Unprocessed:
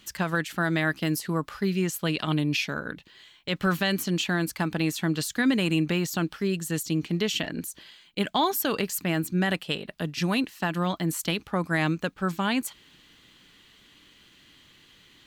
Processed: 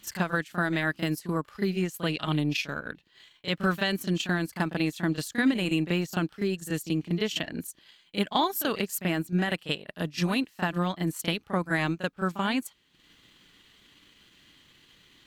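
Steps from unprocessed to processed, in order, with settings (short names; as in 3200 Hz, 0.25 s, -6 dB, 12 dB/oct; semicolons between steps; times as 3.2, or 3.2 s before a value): transient shaper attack +3 dB, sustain -10 dB; pre-echo 34 ms -12 dB; gain -2.5 dB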